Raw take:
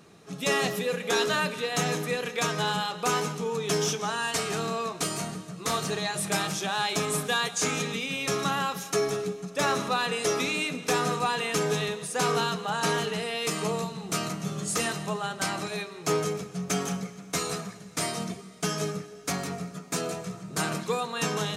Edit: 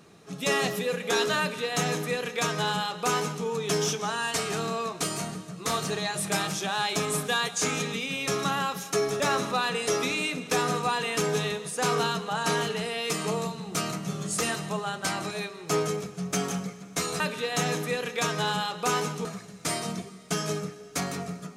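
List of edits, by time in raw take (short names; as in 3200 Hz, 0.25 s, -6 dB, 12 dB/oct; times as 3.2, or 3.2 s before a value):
1.4–3.45 copy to 17.57
9.2–9.57 cut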